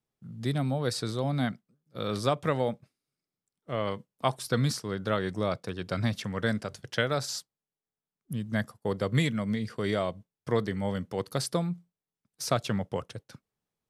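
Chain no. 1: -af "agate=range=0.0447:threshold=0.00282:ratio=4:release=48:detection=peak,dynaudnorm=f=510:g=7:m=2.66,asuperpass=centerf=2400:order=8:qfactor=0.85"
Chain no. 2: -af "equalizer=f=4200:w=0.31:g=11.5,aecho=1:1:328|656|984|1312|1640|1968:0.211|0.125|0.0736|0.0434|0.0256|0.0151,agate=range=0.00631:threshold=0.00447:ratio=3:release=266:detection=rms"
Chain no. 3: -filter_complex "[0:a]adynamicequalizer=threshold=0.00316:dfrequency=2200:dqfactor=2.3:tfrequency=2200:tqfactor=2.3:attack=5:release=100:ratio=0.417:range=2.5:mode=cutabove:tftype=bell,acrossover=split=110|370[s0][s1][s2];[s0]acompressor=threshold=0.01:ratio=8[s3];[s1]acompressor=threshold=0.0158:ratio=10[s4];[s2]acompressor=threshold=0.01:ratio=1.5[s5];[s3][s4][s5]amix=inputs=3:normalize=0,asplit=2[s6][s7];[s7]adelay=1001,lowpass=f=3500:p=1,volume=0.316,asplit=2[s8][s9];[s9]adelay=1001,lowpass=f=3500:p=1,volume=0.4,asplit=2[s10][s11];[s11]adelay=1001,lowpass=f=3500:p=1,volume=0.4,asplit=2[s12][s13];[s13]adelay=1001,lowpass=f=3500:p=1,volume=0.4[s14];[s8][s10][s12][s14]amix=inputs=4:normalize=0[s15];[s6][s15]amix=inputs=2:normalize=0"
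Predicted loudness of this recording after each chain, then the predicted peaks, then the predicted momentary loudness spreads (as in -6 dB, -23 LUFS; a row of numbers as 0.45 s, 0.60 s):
-33.0 LUFS, -26.5 LUFS, -36.0 LUFS; -7.5 dBFS, -4.5 dBFS, -16.0 dBFS; 16 LU, 15 LU, 11 LU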